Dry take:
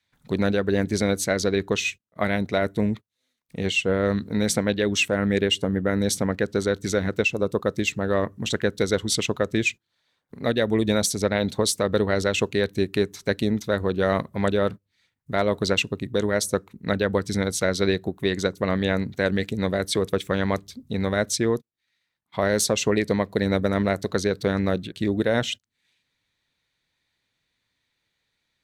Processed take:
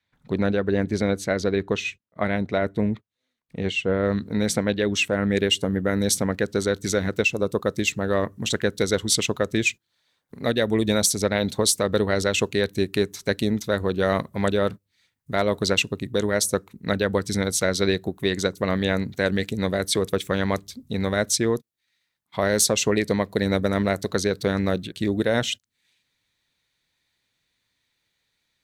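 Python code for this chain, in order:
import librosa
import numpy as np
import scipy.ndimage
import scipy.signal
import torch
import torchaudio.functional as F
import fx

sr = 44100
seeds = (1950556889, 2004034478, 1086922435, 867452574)

y = fx.high_shelf(x, sr, hz=4900.0, db=fx.steps((0.0, -12.0), (4.11, -2.5), (5.35, 6.0)))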